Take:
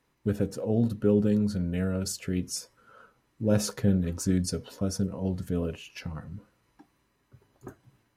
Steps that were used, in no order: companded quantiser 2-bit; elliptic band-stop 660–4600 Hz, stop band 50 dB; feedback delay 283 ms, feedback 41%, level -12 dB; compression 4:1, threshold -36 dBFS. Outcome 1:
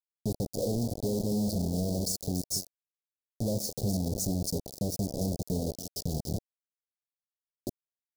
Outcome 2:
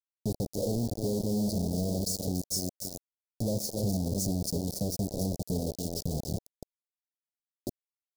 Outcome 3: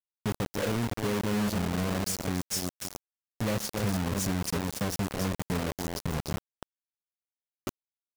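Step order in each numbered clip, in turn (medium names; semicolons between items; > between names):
compression > feedback delay > companded quantiser > elliptic band-stop; feedback delay > compression > companded quantiser > elliptic band-stop; feedback delay > compression > elliptic band-stop > companded quantiser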